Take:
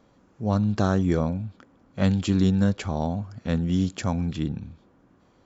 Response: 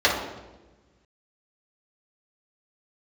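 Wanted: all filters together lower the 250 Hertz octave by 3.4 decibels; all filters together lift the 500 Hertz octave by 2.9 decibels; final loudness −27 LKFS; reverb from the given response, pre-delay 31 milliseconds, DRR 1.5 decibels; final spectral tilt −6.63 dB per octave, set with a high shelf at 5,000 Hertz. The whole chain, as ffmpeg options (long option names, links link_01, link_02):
-filter_complex "[0:a]equalizer=frequency=250:width_type=o:gain=-6,equalizer=frequency=500:width_type=o:gain=5,highshelf=frequency=5000:gain=7.5,asplit=2[link_01][link_02];[1:a]atrim=start_sample=2205,adelay=31[link_03];[link_02][link_03]afir=irnorm=-1:irlink=0,volume=-21dB[link_04];[link_01][link_04]amix=inputs=2:normalize=0,volume=-2.5dB"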